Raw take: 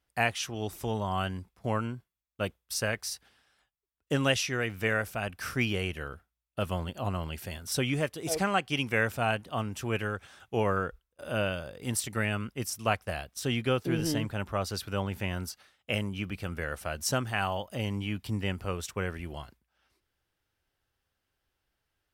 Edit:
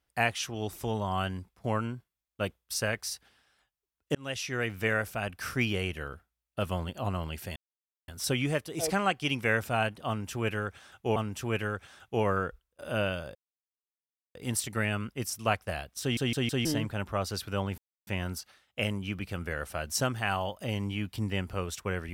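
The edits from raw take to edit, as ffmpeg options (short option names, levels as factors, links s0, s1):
-filter_complex "[0:a]asplit=10[s0][s1][s2][s3][s4][s5][s6][s7][s8][s9];[s0]atrim=end=4.15,asetpts=PTS-STARTPTS,afade=t=out:st=4.146:d=0.004:c=hsin[s10];[s1]atrim=start=4.15:end=7.56,asetpts=PTS-STARTPTS,afade=t=in:d=0.48,afade=t=out:st=3.406:d=0.004:c=hsin,apad=pad_dur=0.52[s11];[s2]atrim=start=7.56:end=10.642,asetpts=PTS-STARTPTS,afade=t=in:d=0.004:c=hsin[s12];[s3]atrim=start=9.558:end=11.75,asetpts=PTS-STARTPTS,afade=t=out:st=2.188:d=0.004:c=hsin,apad=pad_dur=1[s13];[s4]atrim=start=11.75:end=13.572,asetpts=PTS-STARTPTS,afade=t=in:d=0.004:c=hsin[s14];[s5]atrim=start=13.408:end=13.572[s15];[s6]atrim=start=13.408:end=13.572[s16];[s7]atrim=start=13.408:end=13.572[s17];[s8]atrim=start=14.048:end=15.18,asetpts=PTS-STARTPTS,afade=t=out:st=1.128:d=0.004:c=hsin,apad=pad_dur=0.29[s18];[s9]atrim=start=15.18,asetpts=PTS-STARTPTS,afade=t=in:d=0.004:c=hsin[s19];[s10][s11][s12]concat=n=3:v=0:a=1[s20];[s13][s14]concat=n=2:v=0:a=1[s21];[s20][s21]acrossfade=d=0.004:c1=hsin:c2=hsin[s22];[s22][s15]acrossfade=d=0.004:c1=hsin:c2=hsin[s23];[s23][s16]acrossfade=d=0.004:c1=hsin:c2=hsin[s24];[s24][s17]acrossfade=d=0.004:c1=hsin:c2=hsin[s25];[s18][s19]concat=n=2:v=0:a=1[s26];[s25][s26]acrossfade=d=0.004:c1=hsin:c2=hsin"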